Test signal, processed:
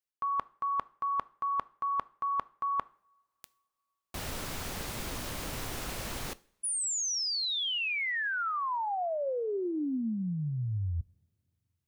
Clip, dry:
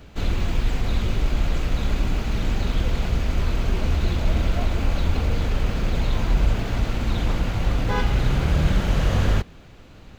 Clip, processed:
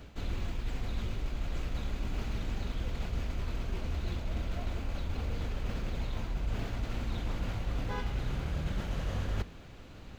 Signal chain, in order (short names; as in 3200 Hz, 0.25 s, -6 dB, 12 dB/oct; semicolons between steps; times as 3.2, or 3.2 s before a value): reverse; compressor 6:1, threshold -27 dBFS; reverse; two-slope reverb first 0.47 s, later 3.3 s, from -27 dB, DRR 18 dB; gain -3.5 dB